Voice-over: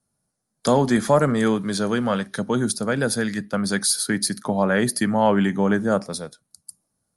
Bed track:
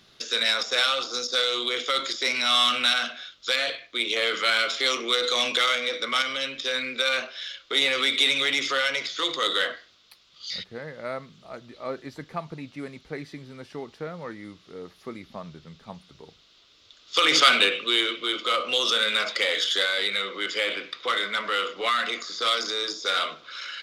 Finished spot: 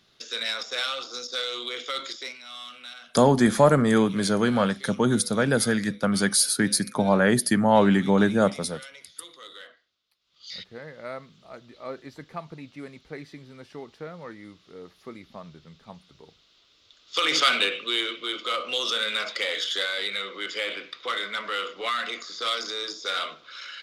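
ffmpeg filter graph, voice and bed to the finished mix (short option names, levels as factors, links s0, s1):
-filter_complex "[0:a]adelay=2500,volume=1[s0];[1:a]volume=3.35,afade=t=out:st=2.12:d=0.26:silence=0.199526,afade=t=in:st=10.19:d=0.45:silence=0.149624[s1];[s0][s1]amix=inputs=2:normalize=0"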